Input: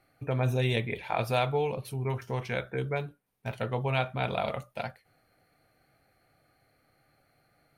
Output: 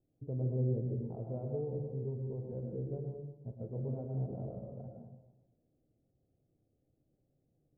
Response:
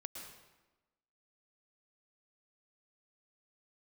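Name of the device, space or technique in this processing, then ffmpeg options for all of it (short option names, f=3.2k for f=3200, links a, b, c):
next room: -filter_complex "[0:a]lowpass=f=450:w=0.5412,lowpass=f=450:w=1.3066[a];[1:a]atrim=start_sample=2205[b];[a][b]afir=irnorm=-1:irlink=0,volume=-1.5dB"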